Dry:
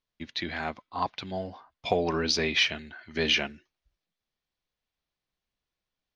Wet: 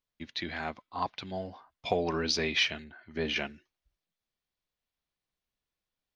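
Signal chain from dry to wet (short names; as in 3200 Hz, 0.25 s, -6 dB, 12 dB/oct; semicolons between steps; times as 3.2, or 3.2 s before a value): 2.84–3.36 high shelf 2300 Hz -12 dB; gain -3 dB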